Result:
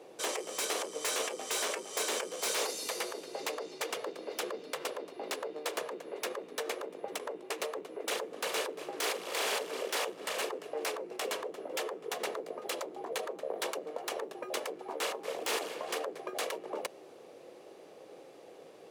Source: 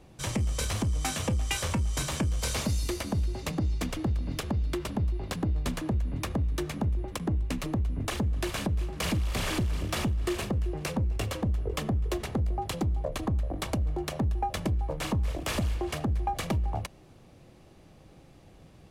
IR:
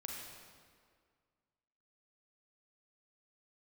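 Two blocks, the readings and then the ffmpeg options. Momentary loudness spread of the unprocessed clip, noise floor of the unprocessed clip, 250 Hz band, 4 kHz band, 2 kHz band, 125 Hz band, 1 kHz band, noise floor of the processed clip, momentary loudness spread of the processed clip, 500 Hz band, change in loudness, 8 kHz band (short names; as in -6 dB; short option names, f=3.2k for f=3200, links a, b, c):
2 LU, -54 dBFS, -15.0 dB, 0.0 dB, 0.0 dB, under -35 dB, -2.5 dB, -53 dBFS, 9 LU, +1.0 dB, -5.5 dB, +0.5 dB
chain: -af "afftfilt=real='re*lt(hypot(re,im),0.0631)':imag='im*lt(hypot(re,im),0.0631)':win_size=1024:overlap=0.75,aeval=exprs='0.0376*(abs(mod(val(0)/0.0376+3,4)-2)-1)':c=same,highpass=f=450:t=q:w=3.4,volume=1.5dB"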